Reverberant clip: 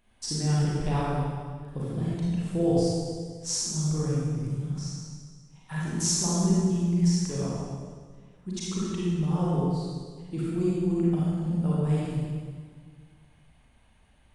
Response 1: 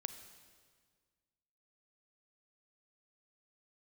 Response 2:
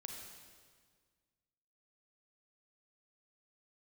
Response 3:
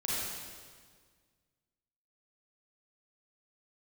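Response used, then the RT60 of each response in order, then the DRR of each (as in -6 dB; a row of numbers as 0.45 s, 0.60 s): 3; 1.7 s, 1.7 s, 1.7 s; 9.5 dB, 1.5 dB, -7.5 dB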